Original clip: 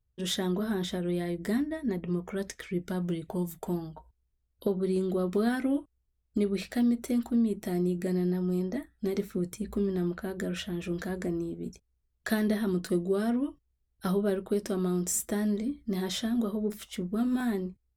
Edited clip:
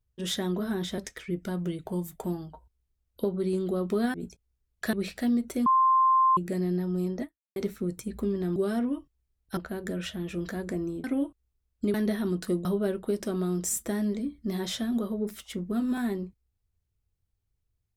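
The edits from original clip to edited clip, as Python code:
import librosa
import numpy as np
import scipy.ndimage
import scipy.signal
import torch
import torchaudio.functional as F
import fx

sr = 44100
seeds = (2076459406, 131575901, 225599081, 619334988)

y = fx.edit(x, sr, fx.cut(start_s=0.98, length_s=1.43),
    fx.swap(start_s=5.57, length_s=0.9, other_s=11.57, other_length_s=0.79),
    fx.bleep(start_s=7.2, length_s=0.71, hz=1050.0, db=-18.0),
    fx.fade_out_span(start_s=8.77, length_s=0.33, curve='exp'),
    fx.move(start_s=13.07, length_s=1.01, to_s=10.1), tone=tone)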